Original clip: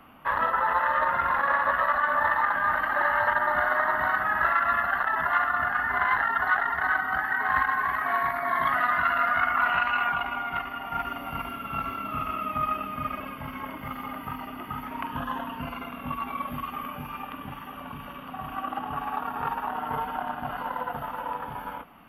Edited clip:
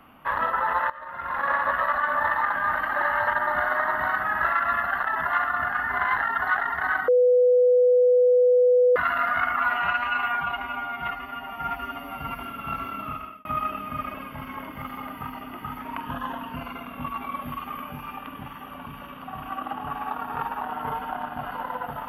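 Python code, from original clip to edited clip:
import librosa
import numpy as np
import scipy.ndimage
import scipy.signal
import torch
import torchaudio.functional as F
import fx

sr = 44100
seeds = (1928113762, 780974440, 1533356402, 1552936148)

y = fx.edit(x, sr, fx.fade_in_from(start_s=0.9, length_s=0.57, curve='qua', floor_db=-17.5),
    fx.bleep(start_s=7.08, length_s=1.88, hz=496.0, db=-14.5),
    fx.stretch_span(start_s=9.56, length_s=1.88, factor=1.5),
    fx.fade_out_span(start_s=12.07, length_s=0.44), tone=tone)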